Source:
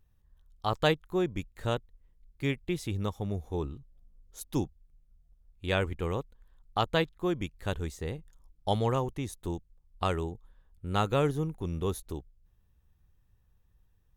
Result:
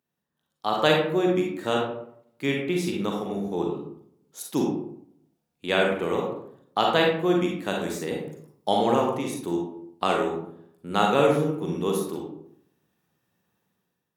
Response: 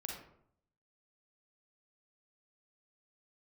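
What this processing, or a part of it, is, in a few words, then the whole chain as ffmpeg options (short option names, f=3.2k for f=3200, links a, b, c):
far laptop microphone: -filter_complex "[1:a]atrim=start_sample=2205[a];[0:a][a]afir=irnorm=-1:irlink=0,highpass=f=180:w=0.5412,highpass=f=180:w=1.3066,dynaudnorm=f=150:g=7:m=9.5dB,asettb=1/sr,asplit=3[b][c][d];[b]atrim=end=7.814[e];[c]atrim=start=7.81:end=8.68,asetpts=PTS-STARTPTS,afade=t=in:d=0.004:c=qsin,afade=t=out:st=0.866:d=0.004:c=qsin,highshelf=f=7.9k:g=7[f];[d]atrim=start=8.676[g];[e][f]acrossfade=d=0.004:c1=hsin:c2=qsin[h];[h][g]acrossfade=d=0.004:c1=qsin:c2=hsin"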